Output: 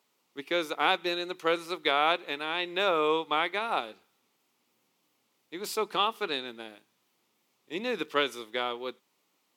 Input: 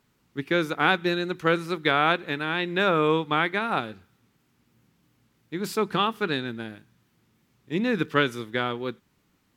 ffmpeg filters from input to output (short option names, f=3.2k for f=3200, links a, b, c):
-af "highpass=500,equalizer=f=1.6k:w=2.5:g=-9.5"